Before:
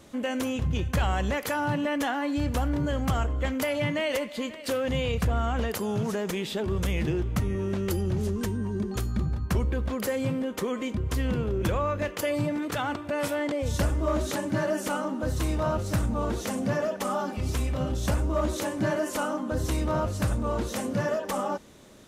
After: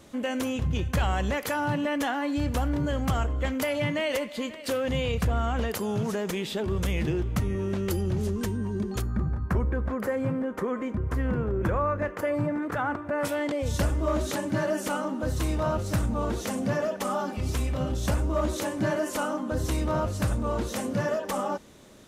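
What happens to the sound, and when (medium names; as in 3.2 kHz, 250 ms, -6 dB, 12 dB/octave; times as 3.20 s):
9.02–13.25 s: resonant high shelf 2.3 kHz -11.5 dB, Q 1.5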